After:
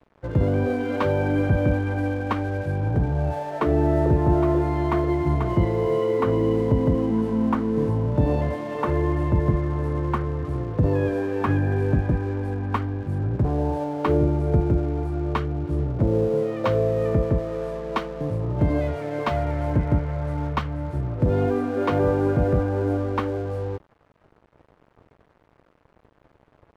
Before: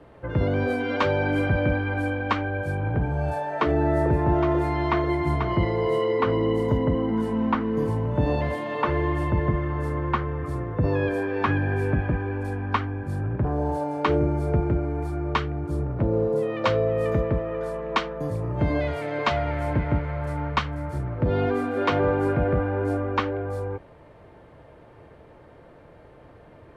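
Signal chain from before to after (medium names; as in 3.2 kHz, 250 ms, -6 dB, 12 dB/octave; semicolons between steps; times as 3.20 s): tilt shelf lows +5.5 dB, about 1.1 kHz; crossover distortion -42.5 dBFS; trim -2 dB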